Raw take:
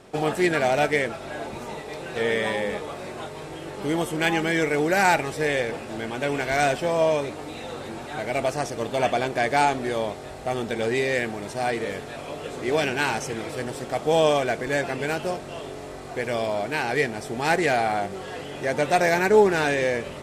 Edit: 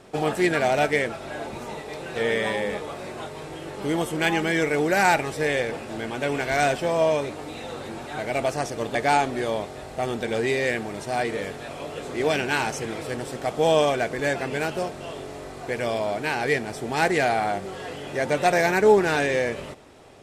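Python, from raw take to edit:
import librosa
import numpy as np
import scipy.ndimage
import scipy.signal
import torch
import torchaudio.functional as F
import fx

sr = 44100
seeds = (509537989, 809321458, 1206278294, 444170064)

y = fx.edit(x, sr, fx.cut(start_s=8.95, length_s=0.48), tone=tone)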